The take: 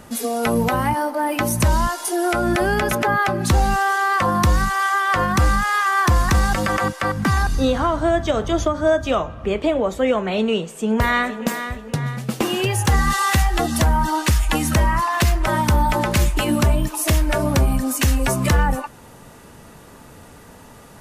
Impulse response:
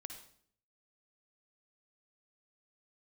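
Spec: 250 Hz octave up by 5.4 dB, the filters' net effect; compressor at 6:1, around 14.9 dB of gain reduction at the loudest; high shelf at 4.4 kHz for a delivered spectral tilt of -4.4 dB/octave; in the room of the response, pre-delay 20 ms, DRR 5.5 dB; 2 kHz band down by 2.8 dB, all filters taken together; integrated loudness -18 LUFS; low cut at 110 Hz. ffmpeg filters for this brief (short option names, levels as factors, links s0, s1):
-filter_complex "[0:a]highpass=110,equalizer=f=250:t=o:g=7,equalizer=f=2000:t=o:g=-5,highshelf=f=4400:g=7,acompressor=threshold=0.0398:ratio=6,asplit=2[s0][s1];[1:a]atrim=start_sample=2205,adelay=20[s2];[s1][s2]afir=irnorm=-1:irlink=0,volume=0.841[s3];[s0][s3]amix=inputs=2:normalize=0,volume=3.76"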